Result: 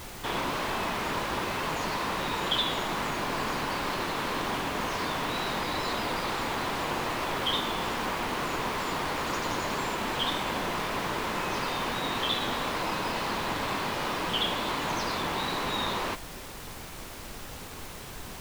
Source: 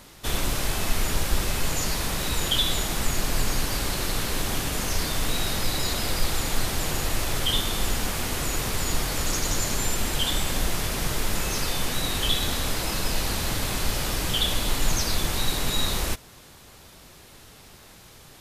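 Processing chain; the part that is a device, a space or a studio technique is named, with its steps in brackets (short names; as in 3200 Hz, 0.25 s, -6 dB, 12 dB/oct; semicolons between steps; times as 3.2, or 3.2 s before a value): horn gramophone (BPF 210–3000 Hz; bell 1000 Hz +7.5 dB 0.46 oct; wow and flutter; pink noise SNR 10 dB)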